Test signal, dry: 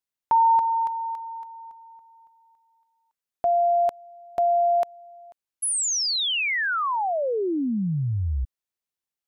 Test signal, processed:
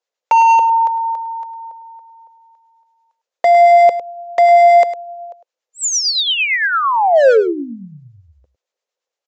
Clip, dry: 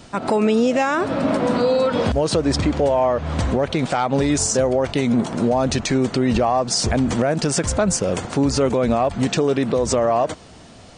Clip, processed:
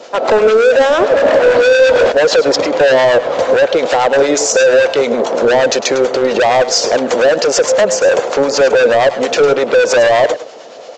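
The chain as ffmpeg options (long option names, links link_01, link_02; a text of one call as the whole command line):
ffmpeg -i in.wav -filter_complex "[0:a]highpass=frequency=510:width_type=q:width=4.9,aresample=16000,asoftclip=type=hard:threshold=-14.5dB,aresample=44100,acrossover=split=870[link_01][link_02];[link_01]aeval=exprs='val(0)*(1-0.5/2+0.5/2*cos(2*PI*8.8*n/s))':channel_layout=same[link_03];[link_02]aeval=exprs='val(0)*(1-0.5/2-0.5/2*cos(2*PI*8.8*n/s))':channel_layout=same[link_04];[link_03][link_04]amix=inputs=2:normalize=0,acontrast=33,aecho=1:1:104:0.211,volume=4.5dB" out.wav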